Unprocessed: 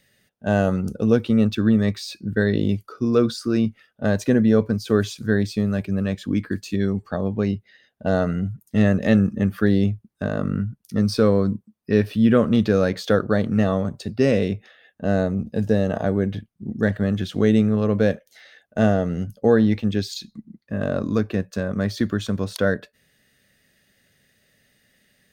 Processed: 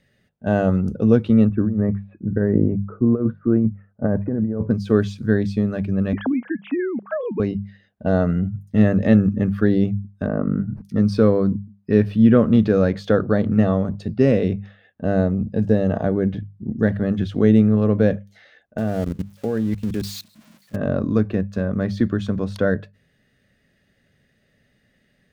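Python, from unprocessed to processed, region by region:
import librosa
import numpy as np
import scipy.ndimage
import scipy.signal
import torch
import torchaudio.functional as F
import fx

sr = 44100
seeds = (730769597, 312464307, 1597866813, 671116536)

y = fx.chain(x, sr, fx.bessel_lowpass(hz=1100.0, order=8),
    fx.over_compress(threshold_db=-20.0, ratio=-0.5), at=(1.49, 4.71))
y = fx.chain(y, sr, fx.sine_speech(),
    fx.highpass(hz=300.0, slope=6),
    fx.band_squash(depth_pct=100), at=(6.13, 7.4))
y = fx.chain(y, sr, fx.moving_average(points=13),
    fx.peak_eq(hz=110.0, db=-14.5, octaves=0.26),
    fx.sustainer(db_per_s=88.0), at=(10.26, 10.82))
y = fx.chain(y, sr, fx.crossing_spikes(level_db=-17.0),
    fx.level_steps(step_db=24), at=(18.78, 20.76))
y = fx.lowpass(y, sr, hz=2100.0, slope=6)
y = fx.low_shelf(y, sr, hz=270.0, db=6.0)
y = fx.hum_notches(y, sr, base_hz=50, count=4)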